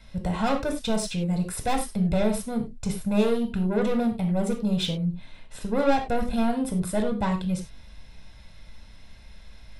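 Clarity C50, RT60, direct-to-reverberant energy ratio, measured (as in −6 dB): 9.0 dB, non-exponential decay, 3.5 dB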